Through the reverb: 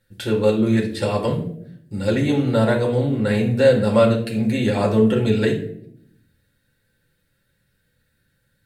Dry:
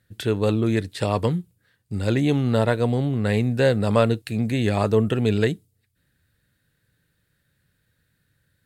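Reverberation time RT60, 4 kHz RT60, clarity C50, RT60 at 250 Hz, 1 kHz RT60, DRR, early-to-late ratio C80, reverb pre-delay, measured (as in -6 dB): 0.70 s, 0.45 s, 8.5 dB, 1.1 s, 0.50 s, -2.0 dB, 12.5 dB, 4 ms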